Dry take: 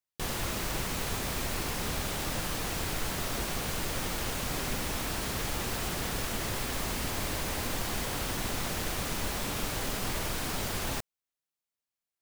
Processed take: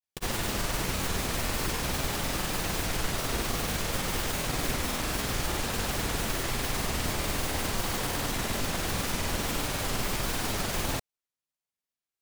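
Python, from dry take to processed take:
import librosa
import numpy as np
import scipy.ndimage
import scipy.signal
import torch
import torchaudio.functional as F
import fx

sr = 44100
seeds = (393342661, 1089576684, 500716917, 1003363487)

p1 = fx.granulator(x, sr, seeds[0], grain_ms=100.0, per_s=20.0, spray_ms=100.0, spread_st=0)
p2 = fx.quant_dither(p1, sr, seeds[1], bits=6, dither='none')
y = p1 + (p2 * 10.0 ** (-4.0 / 20.0))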